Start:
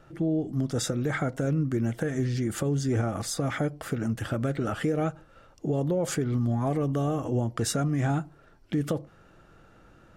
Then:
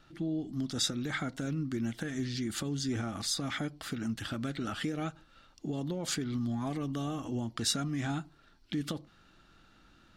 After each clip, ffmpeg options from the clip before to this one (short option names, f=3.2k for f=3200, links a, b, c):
-af "equalizer=f=125:t=o:w=1:g=-6,equalizer=f=250:t=o:w=1:g=4,equalizer=f=500:t=o:w=1:g=-10,equalizer=f=4k:t=o:w=1:g=12,volume=-5dB"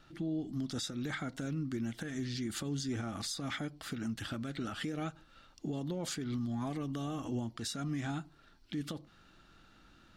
-af "alimiter=level_in=4.5dB:limit=-24dB:level=0:latency=1:release=225,volume=-4.5dB"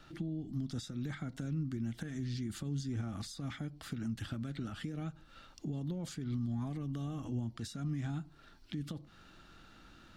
-filter_complex "[0:a]acrossover=split=210[a][b];[b]acompressor=threshold=-51dB:ratio=4[c];[a][c]amix=inputs=2:normalize=0,volume=3.5dB"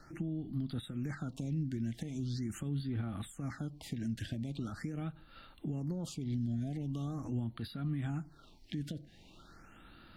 -af "afftfilt=real='re*(1-between(b*sr/1024,1000*pow(7100/1000,0.5+0.5*sin(2*PI*0.42*pts/sr))/1.41,1000*pow(7100/1000,0.5+0.5*sin(2*PI*0.42*pts/sr))*1.41))':imag='im*(1-between(b*sr/1024,1000*pow(7100/1000,0.5+0.5*sin(2*PI*0.42*pts/sr))/1.41,1000*pow(7100/1000,0.5+0.5*sin(2*PI*0.42*pts/sr))*1.41))':win_size=1024:overlap=0.75,volume=1dB"